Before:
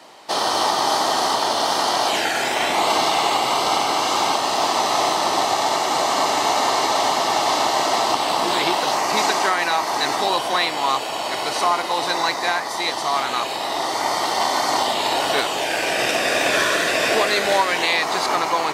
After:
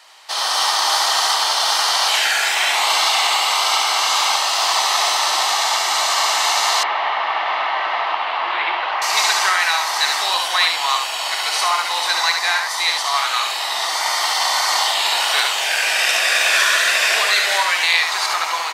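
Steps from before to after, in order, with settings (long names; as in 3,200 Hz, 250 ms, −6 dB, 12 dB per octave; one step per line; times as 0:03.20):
high-pass filter 1,300 Hz 12 dB per octave
single-tap delay 71 ms −5 dB
automatic gain control gain up to 4 dB
0:06.83–0:09.02: low-pass filter 2,600 Hz 24 dB per octave
level +1.5 dB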